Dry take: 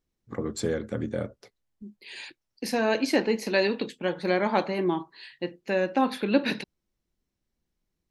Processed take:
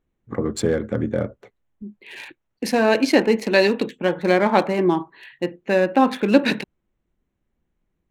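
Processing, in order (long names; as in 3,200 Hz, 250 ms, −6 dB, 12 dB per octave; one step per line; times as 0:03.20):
adaptive Wiener filter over 9 samples
level +7.5 dB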